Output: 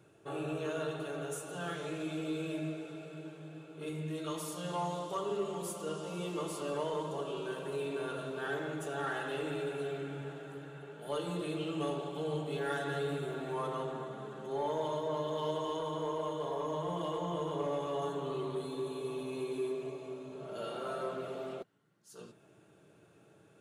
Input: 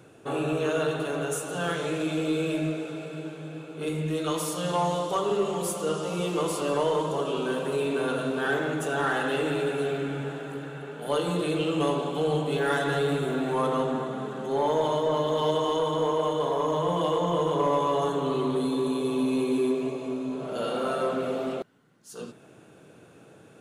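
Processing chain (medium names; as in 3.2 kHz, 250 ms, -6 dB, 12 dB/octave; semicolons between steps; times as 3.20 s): comb of notches 250 Hz; trim -9 dB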